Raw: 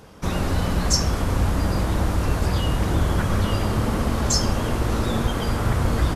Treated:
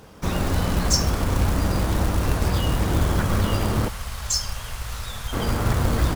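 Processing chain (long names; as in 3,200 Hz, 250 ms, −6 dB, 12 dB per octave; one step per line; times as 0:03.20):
0:03.88–0:05.33: guitar amp tone stack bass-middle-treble 10-0-10
floating-point word with a short mantissa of 2 bits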